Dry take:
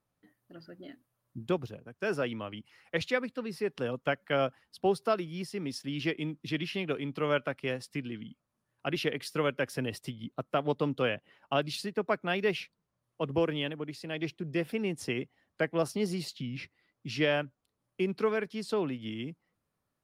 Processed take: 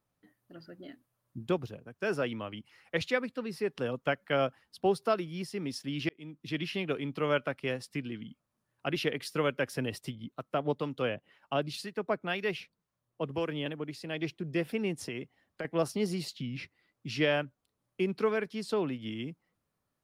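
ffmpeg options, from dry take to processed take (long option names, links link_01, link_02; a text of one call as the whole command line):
ffmpeg -i in.wav -filter_complex "[0:a]asettb=1/sr,asplit=3[link_01][link_02][link_03];[link_01]atrim=end=10.154[link_04];[link_02]atrim=start=10.15:end=13.66,asetpts=PTS-STARTPTS,afade=type=in:duration=0.004:curve=qsin,afade=type=out:start_time=3.506:duration=0.004:curve=qsin,acrossover=split=950[link_05][link_06];[link_05]aeval=exprs='val(0)*(1-0.5/2+0.5/2*cos(2*PI*2*n/s))':channel_layout=same[link_07];[link_06]aeval=exprs='val(0)*(1-0.5/2-0.5/2*cos(2*PI*2*n/s))':channel_layout=same[link_08];[link_07][link_08]amix=inputs=2:normalize=0[link_09];[link_03]atrim=start=13.656[link_10];[link_04][link_09]acrossfade=duration=0.004:curve1=hsin:curve2=qsin[link_11];[link_11][link_10]acrossfade=duration=0.004:curve1=qsin:curve2=hsin,asettb=1/sr,asplit=3[link_12][link_13][link_14];[link_12]atrim=end=14.934[link_15];[link_13]atrim=start=14.93:end=15.65,asetpts=PTS-STARTPTS,afade=type=in:duration=0.004:curve=qsin,afade=type=out:start_time=0.716:duration=0.004:curve=qsin,acompressor=threshold=-33dB:ratio=6:attack=3.2:release=140:knee=1:detection=peak[link_16];[link_14]atrim=start=15.646[link_17];[link_15][link_16]acrossfade=duration=0.004:curve1=hsin:curve2=qsin[link_18];[link_18][link_17]acrossfade=duration=0.004:curve1=qsin:curve2=hsin,asplit=2[link_19][link_20];[link_19]atrim=end=6.09,asetpts=PTS-STARTPTS,afade=type=out:start_time=6.086:duration=0.004:curve=hsin[link_21];[link_20]atrim=start=6.09,asetpts=PTS-STARTPTS,afade=type=in:duration=0.55[link_22];[link_21][link_22]concat=n=2:v=0:a=1" out.wav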